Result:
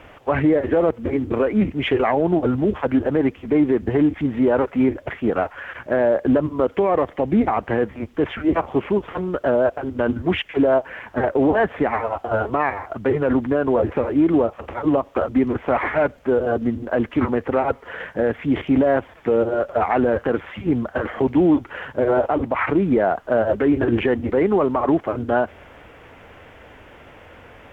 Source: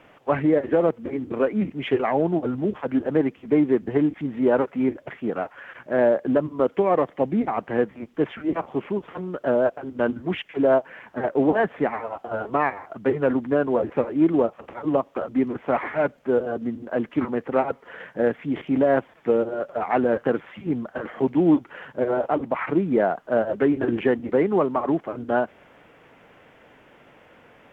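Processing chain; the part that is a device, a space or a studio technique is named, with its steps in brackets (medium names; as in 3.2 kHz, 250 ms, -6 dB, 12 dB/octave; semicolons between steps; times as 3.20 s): car stereo with a boomy subwoofer (resonant low shelf 110 Hz +9.5 dB, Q 1.5; peak limiter -17 dBFS, peak gain reduction 8 dB); trim +7.5 dB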